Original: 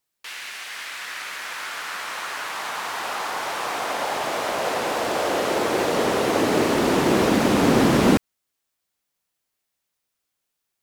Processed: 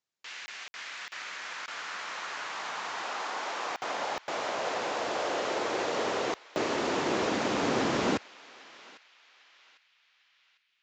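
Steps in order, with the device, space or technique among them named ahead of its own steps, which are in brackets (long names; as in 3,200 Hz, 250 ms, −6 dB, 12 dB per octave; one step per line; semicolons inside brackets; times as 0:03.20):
call with lost packets (high-pass filter 100 Hz 12 dB per octave; downsampling to 16,000 Hz; dropped packets bursts)
0:03.02–0:03.71: high-pass filter 200 Hz 24 dB per octave
dynamic equaliser 180 Hz, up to −8 dB, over −34 dBFS, Q 0.73
feedback echo with a band-pass in the loop 800 ms, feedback 48%, band-pass 2,900 Hz, level −16.5 dB
level −7 dB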